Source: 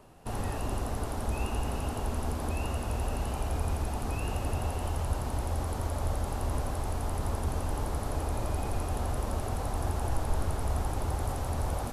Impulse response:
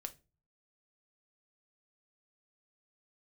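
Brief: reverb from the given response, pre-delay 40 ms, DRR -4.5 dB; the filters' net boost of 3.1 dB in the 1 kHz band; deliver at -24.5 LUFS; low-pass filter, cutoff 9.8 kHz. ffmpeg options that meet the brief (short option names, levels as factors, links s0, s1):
-filter_complex "[0:a]lowpass=9800,equalizer=f=1000:t=o:g=4,asplit=2[s0][s1];[1:a]atrim=start_sample=2205,adelay=40[s2];[s1][s2]afir=irnorm=-1:irlink=0,volume=2.51[s3];[s0][s3]amix=inputs=2:normalize=0,volume=1.41"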